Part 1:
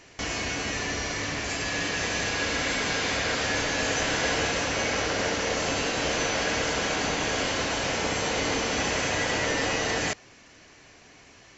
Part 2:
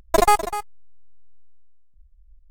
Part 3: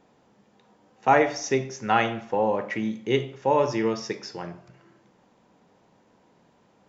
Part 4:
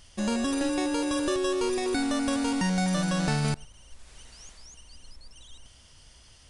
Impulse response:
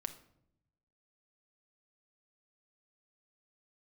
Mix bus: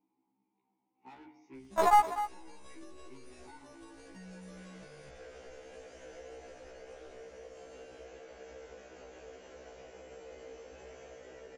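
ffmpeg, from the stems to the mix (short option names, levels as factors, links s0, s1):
-filter_complex "[0:a]equalizer=f=125:t=o:w=1:g=-11,equalizer=f=250:t=o:w=1:g=-7,equalizer=f=500:t=o:w=1:g=8,equalizer=f=1000:t=o:w=1:g=-9,equalizer=f=2000:t=o:w=1:g=-4,equalizer=f=4000:t=o:w=1:g=-9,adelay=1950,volume=0.237[s0];[1:a]equalizer=f=1100:t=o:w=2.1:g=11,adelay=1650,volume=0.211[s1];[2:a]asplit=3[s2][s3][s4];[s2]bandpass=f=300:t=q:w=8,volume=1[s5];[s3]bandpass=f=870:t=q:w=8,volume=0.501[s6];[s4]bandpass=f=2240:t=q:w=8,volume=0.355[s7];[s5][s6][s7]amix=inputs=3:normalize=0,asoftclip=type=tanh:threshold=0.0158,volume=0.531,asplit=2[s8][s9];[3:a]highshelf=f=5200:g=9.5,acompressor=threshold=0.0316:ratio=6,adelay=1550,volume=0.335[s10];[s9]apad=whole_len=596577[s11];[s0][s11]sidechaincompress=threshold=0.002:ratio=8:attack=16:release=268[s12];[s12][s8][s10]amix=inputs=3:normalize=0,highshelf=f=3600:g=-9,acompressor=threshold=0.00447:ratio=3,volume=1[s13];[s1][s13]amix=inputs=2:normalize=0,afftfilt=real='re*1.73*eq(mod(b,3),0)':imag='im*1.73*eq(mod(b,3),0)':win_size=2048:overlap=0.75"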